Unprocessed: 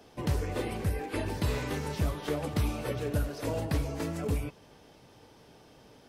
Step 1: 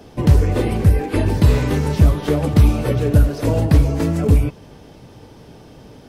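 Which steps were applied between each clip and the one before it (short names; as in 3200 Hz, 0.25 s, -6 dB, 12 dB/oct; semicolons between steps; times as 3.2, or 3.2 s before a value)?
low shelf 370 Hz +10 dB; gain +8.5 dB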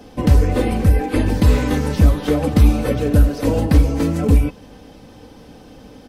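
comb 3.9 ms, depth 51%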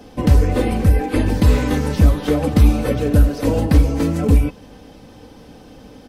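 nothing audible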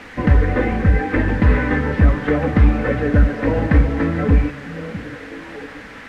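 added noise blue -27 dBFS; synth low-pass 1800 Hz, resonance Q 3.5; delay with a stepping band-pass 0.657 s, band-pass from 160 Hz, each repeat 1.4 oct, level -8 dB; gain -1 dB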